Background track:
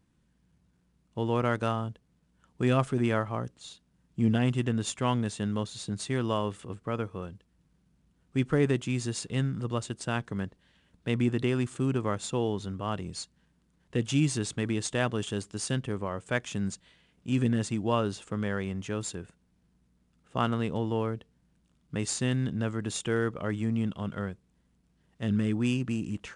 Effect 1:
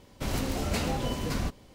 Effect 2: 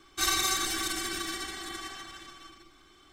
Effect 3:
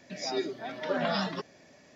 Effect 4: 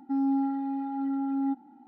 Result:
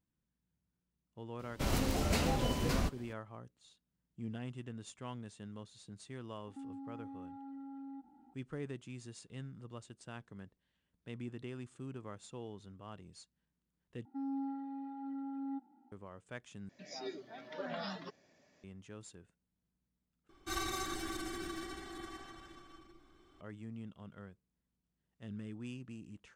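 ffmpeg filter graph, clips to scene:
-filter_complex "[4:a]asplit=2[a][b];[0:a]volume=-17.5dB[c];[a]acompressor=threshold=-36dB:ratio=6:attack=3.2:release=140:knee=1:detection=peak[d];[2:a]tiltshelf=f=1.3k:g=7[e];[c]asplit=4[f][g][h][i];[f]atrim=end=14.054[j];[b]atrim=end=1.87,asetpts=PTS-STARTPTS,volume=-12.5dB[k];[g]atrim=start=15.916:end=16.694[l];[3:a]atrim=end=1.95,asetpts=PTS-STARTPTS,volume=-12dB[m];[h]atrim=start=18.636:end=20.294[n];[e]atrim=end=3.12,asetpts=PTS-STARTPTS,volume=-9dB[o];[i]atrim=start=23.406[p];[1:a]atrim=end=1.74,asetpts=PTS-STARTPTS,volume=-2.5dB,afade=t=in:d=0.004:c=hsin,afade=t=out:st=1.736:d=0.004:c=hsin,adelay=1390[q];[d]atrim=end=1.87,asetpts=PTS-STARTPTS,volume=-9.5dB,afade=t=in:d=0.004:c=hsin,afade=t=out:st=1.866:d=0.004:c=hsin,adelay=6470[r];[j][k]acrossfade=d=0.004:c1=hsin:c2=hsin[s];[s][l]acrossfade=d=0.004:c1=hsin:c2=hsin[t];[t][m]acrossfade=d=0.004:c1=hsin:c2=hsin[u];[u][n]acrossfade=d=0.004:c1=hsin:c2=hsin[v];[v][o]acrossfade=d=0.004:c1=hsin:c2=hsin[w];[w][p]acrossfade=d=0.004:c1=hsin:c2=hsin[x];[x][q][r]amix=inputs=3:normalize=0"

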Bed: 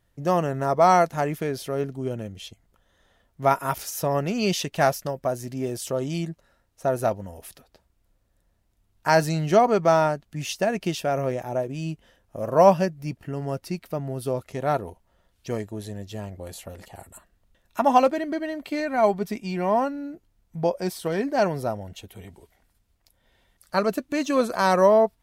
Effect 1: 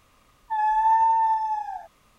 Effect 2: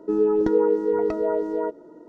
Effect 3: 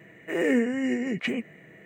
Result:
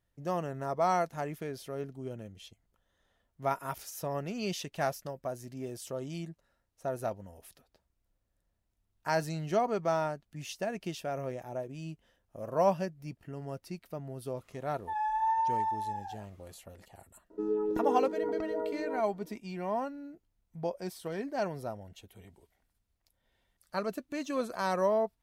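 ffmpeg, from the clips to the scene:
-filter_complex "[0:a]volume=-11dB[a];[1:a]atrim=end=2.18,asetpts=PTS-STARTPTS,volume=-9.5dB,afade=t=in:d=0.004:c=hsin,afade=t=out:st=2.176:d=0.004:c=hsin,adelay=14370[b];[2:a]atrim=end=2.08,asetpts=PTS-STARTPTS,volume=-11dB,afade=t=in:d=0.004:c=hsin,afade=t=out:st=2.076:d=0.004:c=hsin,adelay=17300[c];[a][b][c]amix=inputs=3:normalize=0"

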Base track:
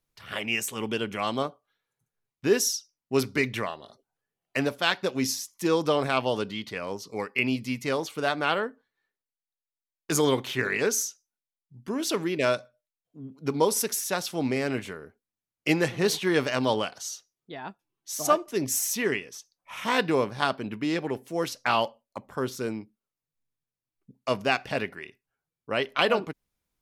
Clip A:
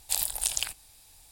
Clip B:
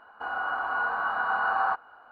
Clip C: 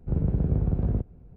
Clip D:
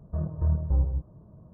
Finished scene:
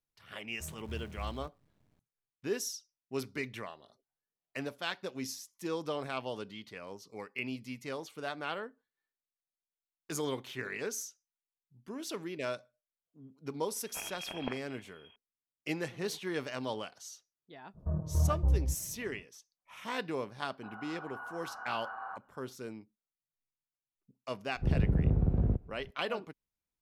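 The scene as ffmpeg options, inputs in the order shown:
-filter_complex "[4:a]asplit=2[a][b];[0:a]volume=-12dB[c];[a]acrusher=bits=7:dc=4:mix=0:aa=0.000001[d];[1:a]lowpass=f=2.8k:t=q:w=0.5098,lowpass=f=2.8k:t=q:w=0.6013,lowpass=f=2.8k:t=q:w=0.9,lowpass=f=2.8k:t=q:w=2.563,afreqshift=-3300[e];[2:a]lowpass=2.7k[f];[d]atrim=end=1.53,asetpts=PTS-STARTPTS,volume=-18dB,afade=t=in:d=0.004:c=hsin,afade=t=out:st=1.526:d=0.004:c=hsin,adelay=470[g];[e]atrim=end=1.31,asetpts=PTS-STARTPTS,volume=-1dB,afade=t=in:d=0.004:c=hsin,afade=t=out:st=1.306:d=0.004:c=hsin,adelay=13850[h];[b]atrim=end=1.53,asetpts=PTS-STARTPTS,volume=-3.5dB,afade=t=in:d=0.05,afade=t=out:st=1.48:d=0.05,adelay=17730[i];[f]atrim=end=2.11,asetpts=PTS-STARTPTS,volume=-16.5dB,afade=t=in:d=0.004:c=hsin,afade=t=out:st=2.106:d=0.004:c=hsin,adelay=20420[j];[3:a]atrim=end=1.36,asetpts=PTS-STARTPTS,volume=-3dB,afade=t=in:d=0.004:c=hsin,afade=t=out:st=1.356:d=0.004:c=hsin,adelay=24550[k];[c][g][h][i][j][k]amix=inputs=6:normalize=0"

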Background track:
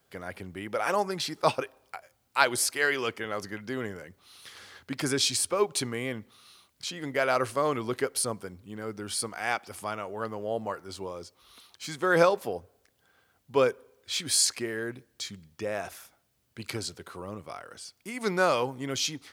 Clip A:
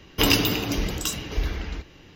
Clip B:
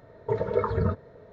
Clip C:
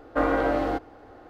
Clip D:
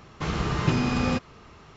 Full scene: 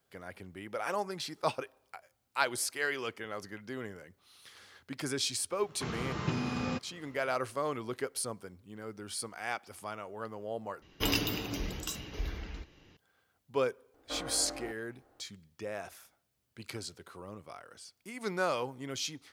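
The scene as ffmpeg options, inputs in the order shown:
-filter_complex "[0:a]volume=-7dB[a];[4:a]highpass=93[b];[a]asplit=2[c][d];[c]atrim=end=10.824[e];[1:a]atrim=end=2.15,asetpts=PTS-STARTPTS,volume=-10.5dB[f];[d]atrim=start=12.966[g];[b]atrim=end=1.76,asetpts=PTS-STARTPTS,volume=-9dB,afade=t=in:d=0.004:c=hsin,afade=t=out:st=1.756:d=0.004:c=hsin,adelay=5600[h];[3:a]atrim=end=1.29,asetpts=PTS-STARTPTS,volume=-18dB,afade=t=in:d=0.004:c=hsin,afade=t=out:st=1.286:d=0.004:c=hsin,adelay=13940[i];[e][f]acrossfade=d=0.004:c1=hsin:c2=hsin[j];[j][g]acrossfade=d=0.004:c1=hsin:c2=hsin[k];[k][h][i]amix=inputs=3:normalize=0"

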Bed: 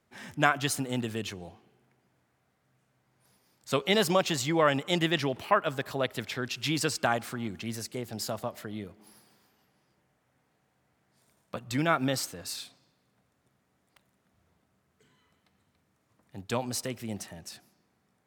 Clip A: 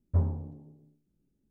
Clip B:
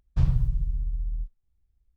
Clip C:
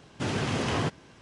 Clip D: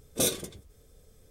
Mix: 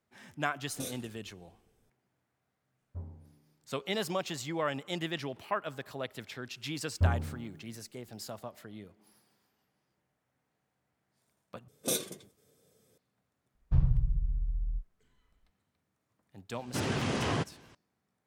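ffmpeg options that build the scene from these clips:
-filter_complex "[4:a]asplit=2[a][b];[1:a]asplit=2[c][d];[0:a]volume=-8.5dB[e];[a]flanger=delay=18:depth=6.7:speed=2.3[f];[d]aemphasis=mode=production:type=50kf[g];[b]highpass=f=130:w=0.5412,highpass=f=130:w=1.3066[h];[2:a]lowpass=f=1.3k:p=1[i];[e]asplit=2[j][k];[j]atrim=end=11.684[l];[h]atrim=end=1.3,asetpts=PTS-STARTPTS,volume=-5dB[m];[k]atrim=start=12.976[n];[f]atrim=end=1.3,asetpts=PTS-STARTPTS,volume=-11.5dB,afade=t=in:d=0.004:c=hsin,afade=t=out:st=1.296:d=0.004:c=hsin,adelay=600[o];[c]atrim=end=1.5,asetpts=PTS-STARTPTS,volume=-16.5dB,afade=t=in:d=0.004:c=hsin,afade=t=out:st=1.496:d=0.004:c=hsin,adelay=2810[p];[g]atrim=end=1.5,asetpts=PTS-STARTPTS,volume=-1dB,afade=t=in:d=0.004:c=hsin,afade=t=out:st=1.496:d=0.004:c=hsin,adelay=6870[q];[i]atrim=end=1.96,asetpts=PTS-STARTPTS,volume=-3.5dB,afade=t=in:d=0.004:c=hsin,afade=t=out:st=1.956:d=0.004:c=hsin,adelay=13550[r];[3:a]atrim=end=1.21,asetpts=PTS-STARTPTS,volume=-3dB,afade=t=in:d=0.004:c=hsin,afade=t=out:st=1.206:d=0.004:c=hsin,adelay=16540[s];[l][m]acrossfade=d=0.004:c1=hsin:c2=hsin[t];[t][n]acrossfade=d=0.004:c1=hsin:c2=hsin[u];[u][o][p][q][r][s]amix=inputs=6:normalize=0"

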